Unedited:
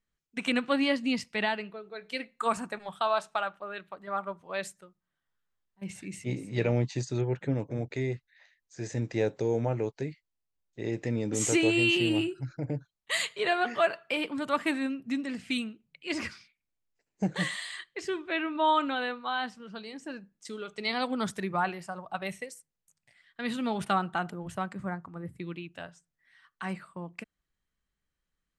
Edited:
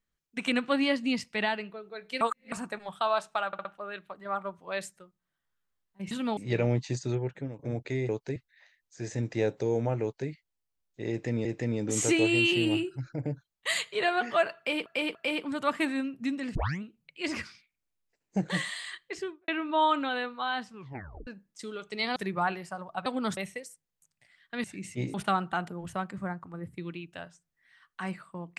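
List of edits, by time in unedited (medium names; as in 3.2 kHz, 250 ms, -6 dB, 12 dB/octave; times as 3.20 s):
2.21–2.52 s: reverse
3.47 s: stutter 0.06 s, 4 plays
5.93–6.43 s: swap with 23.50–23.76 s
7.15–7.65 s: fade out, to -13.5 dB
9.81–10.08 s: copy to 8.15 s
10.89–11.24 s: loop, 2 plays
14.01–14.30 s: loop, 3 plays
15.41 s: tape start 0.27 s
17.98–18.34 s: studio fade out
19.57 s: tape stop 0.56 s
21.02–21.33 s: move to 22.23 s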